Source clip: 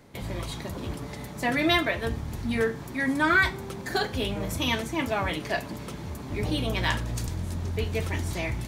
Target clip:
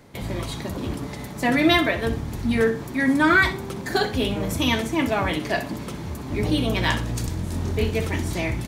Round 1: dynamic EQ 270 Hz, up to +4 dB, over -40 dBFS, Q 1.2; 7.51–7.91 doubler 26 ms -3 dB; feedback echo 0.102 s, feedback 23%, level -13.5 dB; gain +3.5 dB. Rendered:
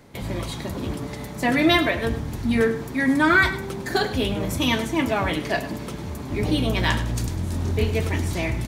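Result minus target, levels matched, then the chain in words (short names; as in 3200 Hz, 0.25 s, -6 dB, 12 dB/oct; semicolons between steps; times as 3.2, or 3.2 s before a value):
echo 40 ms late
dynamic EQ 270 Hz, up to +4 dB, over -40 dBFS, Q 1.2; 7.51–7.91 doubler 26 ms -3 dB; feedback echo 62 ms, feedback 23%, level -13.5 dB; gain +3.5 dB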